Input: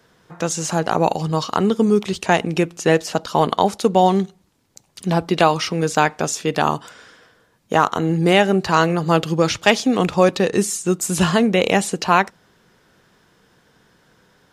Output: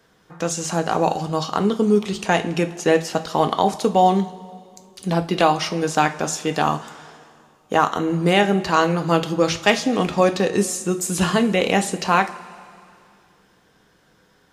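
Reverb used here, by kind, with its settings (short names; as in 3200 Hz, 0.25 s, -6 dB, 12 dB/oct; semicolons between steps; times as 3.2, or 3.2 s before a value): two-slope reverb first 0.29 s, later 2.5 s, from -18 dB, DRR 7 dB; gain -2.5 dB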